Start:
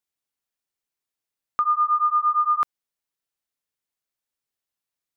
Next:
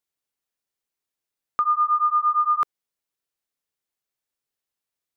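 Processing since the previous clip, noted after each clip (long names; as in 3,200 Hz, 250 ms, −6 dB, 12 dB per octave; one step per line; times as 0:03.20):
parametric band 430 Hz +2.5 dB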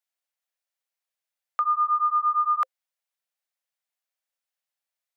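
Chebyshev high-pass with heavy ripple 510 Hz, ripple 3 dB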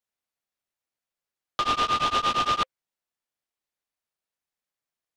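short delay modulated by noise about 1,800 Hz, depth 0.071 ms
level −1.5 dB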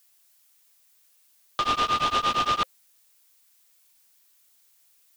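background noise blue −62 dBFS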